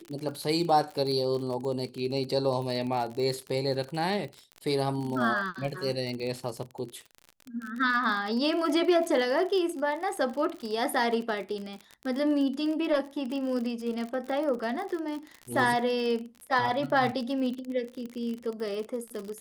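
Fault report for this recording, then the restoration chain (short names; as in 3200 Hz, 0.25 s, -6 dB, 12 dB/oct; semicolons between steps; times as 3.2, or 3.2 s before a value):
crackle 43/s -33 dBFS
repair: de-click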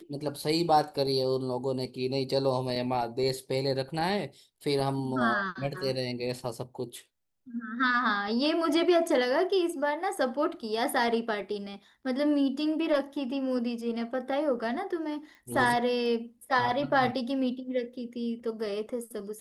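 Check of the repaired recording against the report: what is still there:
none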